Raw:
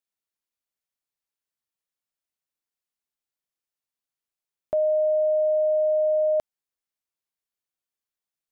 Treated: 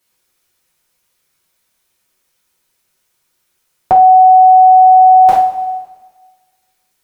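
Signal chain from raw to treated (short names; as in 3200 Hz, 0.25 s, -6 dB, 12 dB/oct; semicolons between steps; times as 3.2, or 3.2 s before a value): two-slope reverb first 0.39 s, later 1.7 s, from -18 dB, DRR -7 dB; varispeed +21%; maximiser +19.5 dB; gain -1 dB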